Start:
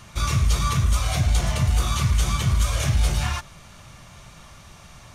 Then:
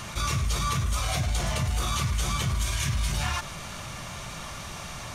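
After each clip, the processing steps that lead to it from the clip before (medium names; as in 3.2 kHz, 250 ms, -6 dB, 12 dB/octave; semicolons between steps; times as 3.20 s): spectral replace 2.63–3.10 s, 260–1500 Hz before; bass shelf 160 Hz -5.5 dB; level flattener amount 50%; trim -4 dB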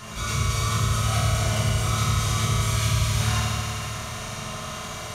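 reverberation RT60 3.5 s, pre-delay 4 ms, DRR -9 dB; trim -5 dB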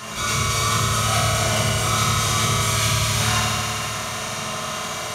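high-pass 240 Hz 6 dB/octave; trim +7 dB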